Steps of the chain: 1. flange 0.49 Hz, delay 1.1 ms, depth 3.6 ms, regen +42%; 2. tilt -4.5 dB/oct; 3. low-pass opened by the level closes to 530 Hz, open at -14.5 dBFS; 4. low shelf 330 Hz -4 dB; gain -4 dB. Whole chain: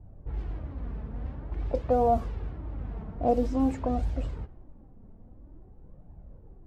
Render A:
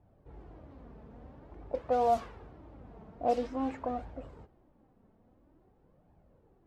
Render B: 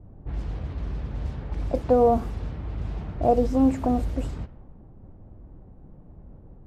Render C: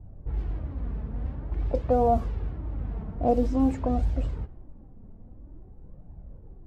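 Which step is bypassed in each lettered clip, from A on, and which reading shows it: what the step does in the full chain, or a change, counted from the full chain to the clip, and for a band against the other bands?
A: 2, 125 Hz band -13.5 dB; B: 1, 1 kHz band -2.0 dB; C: 4, 125 Hz band +3.0 dB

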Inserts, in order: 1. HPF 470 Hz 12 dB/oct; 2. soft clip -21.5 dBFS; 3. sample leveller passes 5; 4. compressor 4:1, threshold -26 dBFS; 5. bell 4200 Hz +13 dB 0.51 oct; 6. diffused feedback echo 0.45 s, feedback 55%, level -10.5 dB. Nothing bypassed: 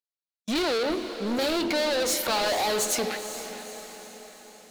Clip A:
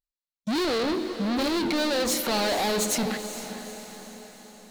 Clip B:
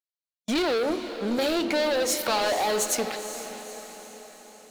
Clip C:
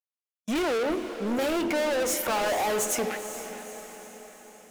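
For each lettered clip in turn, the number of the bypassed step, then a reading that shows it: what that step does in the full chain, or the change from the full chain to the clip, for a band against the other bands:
1, 125 Hz band +7.0 dB; 2, distortion -14 dB; 5, 4 kHz band -7.0 dB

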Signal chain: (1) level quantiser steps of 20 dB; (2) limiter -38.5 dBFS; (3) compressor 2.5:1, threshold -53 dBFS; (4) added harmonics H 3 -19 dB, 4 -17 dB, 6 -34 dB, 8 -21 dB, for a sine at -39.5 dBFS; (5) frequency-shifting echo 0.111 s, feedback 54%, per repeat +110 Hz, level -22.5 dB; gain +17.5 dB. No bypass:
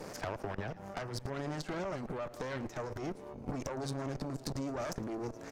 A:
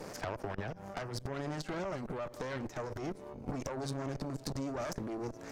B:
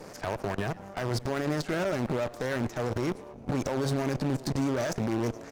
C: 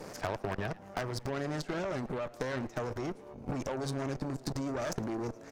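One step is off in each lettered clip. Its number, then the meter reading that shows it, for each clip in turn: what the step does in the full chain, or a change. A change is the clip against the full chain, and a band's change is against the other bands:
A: 5, echo-to-direct -21.0 dB to none; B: 3, mean gain reduction 5.5 dB; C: 2, mean gain reduction 4.5 dB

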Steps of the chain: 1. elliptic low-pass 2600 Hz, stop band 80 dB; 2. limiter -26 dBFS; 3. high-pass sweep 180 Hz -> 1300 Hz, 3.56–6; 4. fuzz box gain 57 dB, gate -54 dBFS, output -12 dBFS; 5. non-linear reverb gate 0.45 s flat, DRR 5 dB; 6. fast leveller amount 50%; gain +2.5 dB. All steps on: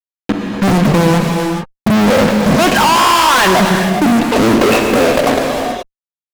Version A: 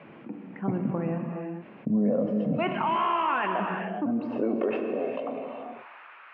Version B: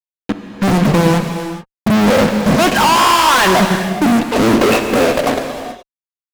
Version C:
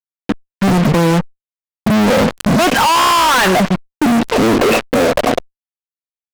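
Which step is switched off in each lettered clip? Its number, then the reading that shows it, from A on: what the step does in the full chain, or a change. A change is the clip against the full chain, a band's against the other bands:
4, distortion -2 dB; 6, momentary loudness spread change +5 LU; 5, loudness change -1.5 LU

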